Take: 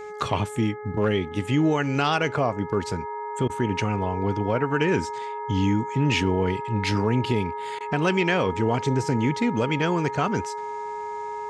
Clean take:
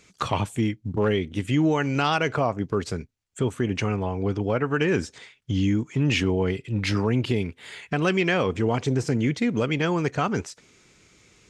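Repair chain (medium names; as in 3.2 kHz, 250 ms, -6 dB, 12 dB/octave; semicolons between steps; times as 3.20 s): de-hum 421.1 Hz, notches 5; band-stop 940 Hz, Q 30; interpolate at 3.48/7.79 s, 14 ms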